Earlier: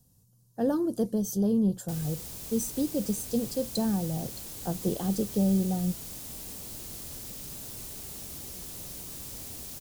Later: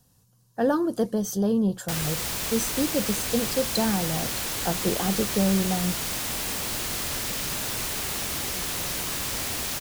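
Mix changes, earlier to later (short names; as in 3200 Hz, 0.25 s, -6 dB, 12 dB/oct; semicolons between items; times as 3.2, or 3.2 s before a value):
background +8.5 dB; master: add bell 1700 Hz +13.5 dB 2.8 oct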